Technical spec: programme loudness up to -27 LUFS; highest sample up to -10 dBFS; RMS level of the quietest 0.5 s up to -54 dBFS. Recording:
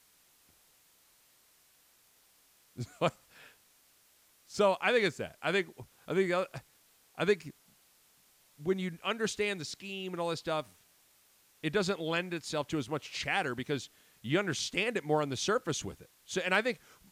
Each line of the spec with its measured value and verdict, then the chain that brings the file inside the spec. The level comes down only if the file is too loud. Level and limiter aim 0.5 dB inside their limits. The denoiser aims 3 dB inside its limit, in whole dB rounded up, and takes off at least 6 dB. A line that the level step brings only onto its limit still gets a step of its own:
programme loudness -33.0 LUFS: OK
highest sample -14.0 dBFS: OK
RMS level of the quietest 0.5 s -66 dBFS: OK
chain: none

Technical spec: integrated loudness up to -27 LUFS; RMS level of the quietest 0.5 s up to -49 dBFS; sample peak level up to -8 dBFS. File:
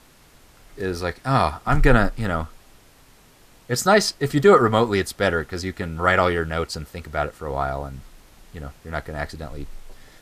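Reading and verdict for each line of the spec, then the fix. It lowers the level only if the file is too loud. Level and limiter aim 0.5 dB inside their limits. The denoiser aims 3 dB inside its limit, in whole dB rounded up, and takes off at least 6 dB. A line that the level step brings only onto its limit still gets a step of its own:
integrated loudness -21.5 LUFS: fail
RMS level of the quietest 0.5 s -52 dBFS: OK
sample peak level -4.0 dBFS: fail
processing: gain -6 dB

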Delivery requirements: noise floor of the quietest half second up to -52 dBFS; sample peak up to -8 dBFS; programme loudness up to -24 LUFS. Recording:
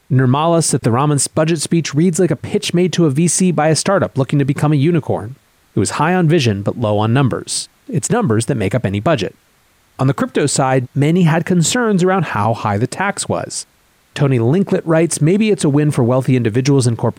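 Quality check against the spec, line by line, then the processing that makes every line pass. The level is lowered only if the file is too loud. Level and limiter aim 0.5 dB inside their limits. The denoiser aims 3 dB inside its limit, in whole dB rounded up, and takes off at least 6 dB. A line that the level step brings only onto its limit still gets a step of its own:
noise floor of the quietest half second -55 dBFS: OK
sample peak -5.0 dBFS: fail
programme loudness -15.0 LUFS: fail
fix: gain -9.5 dB

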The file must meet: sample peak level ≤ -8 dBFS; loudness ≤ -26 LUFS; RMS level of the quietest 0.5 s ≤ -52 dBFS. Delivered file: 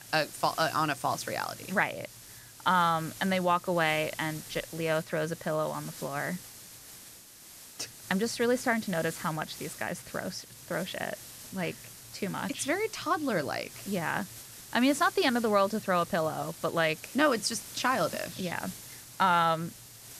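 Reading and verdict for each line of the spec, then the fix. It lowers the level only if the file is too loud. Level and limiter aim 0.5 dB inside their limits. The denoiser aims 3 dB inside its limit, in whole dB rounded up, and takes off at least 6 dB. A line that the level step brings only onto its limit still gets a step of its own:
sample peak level -11.5 dBFS: OK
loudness -30.0 LUFS: OK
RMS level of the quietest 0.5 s -51 dBFS: fail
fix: denoiser 6 dB, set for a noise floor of -51 dBFS

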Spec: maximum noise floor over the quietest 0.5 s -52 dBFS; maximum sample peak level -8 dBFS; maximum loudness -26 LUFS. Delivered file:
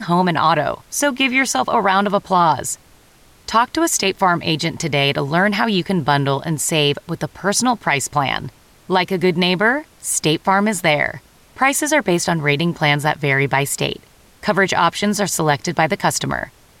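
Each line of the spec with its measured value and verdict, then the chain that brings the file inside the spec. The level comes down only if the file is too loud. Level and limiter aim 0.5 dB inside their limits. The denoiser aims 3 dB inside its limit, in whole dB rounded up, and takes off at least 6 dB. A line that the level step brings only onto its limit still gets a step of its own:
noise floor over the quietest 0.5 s -50 dBFS: fail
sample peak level -4.0 dBFS: fail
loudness -17.5 LUFS: fail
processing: gain -9 dB

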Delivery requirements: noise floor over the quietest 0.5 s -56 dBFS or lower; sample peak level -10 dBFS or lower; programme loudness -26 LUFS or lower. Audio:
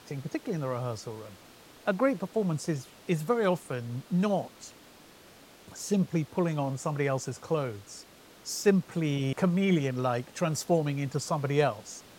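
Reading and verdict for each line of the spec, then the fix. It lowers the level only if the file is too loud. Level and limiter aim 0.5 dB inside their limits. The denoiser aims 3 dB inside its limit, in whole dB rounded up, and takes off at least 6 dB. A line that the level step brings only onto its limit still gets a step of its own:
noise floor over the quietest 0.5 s -54 dBFS: fail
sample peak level -11.5 dBFS: OK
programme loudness -30.0 LUFS: OK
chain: denoiser 6 dB, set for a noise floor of -54 dBFS

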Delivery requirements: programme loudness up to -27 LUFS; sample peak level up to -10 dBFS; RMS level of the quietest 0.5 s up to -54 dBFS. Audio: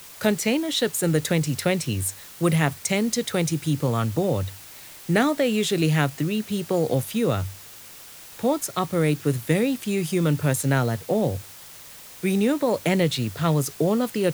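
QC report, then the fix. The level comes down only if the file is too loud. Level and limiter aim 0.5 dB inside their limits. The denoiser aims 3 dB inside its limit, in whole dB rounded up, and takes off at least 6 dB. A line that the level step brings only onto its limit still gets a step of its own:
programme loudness -23.5 LUFS: fail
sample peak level -6.0 dBFS: fail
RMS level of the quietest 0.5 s -44 dBFS: fail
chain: denoiser 9 dB, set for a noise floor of -44 dBFS; gain -4 dB; limiter -10.5 dBFS

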